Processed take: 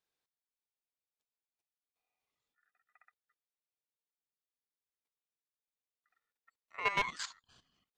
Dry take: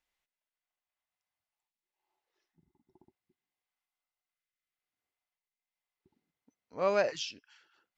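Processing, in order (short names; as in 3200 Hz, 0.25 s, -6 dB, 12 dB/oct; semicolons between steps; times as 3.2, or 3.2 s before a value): level quantiser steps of 13 dB; one-sided clip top -31 dBFS; ring modulator 1600 Hz; gain +3 dB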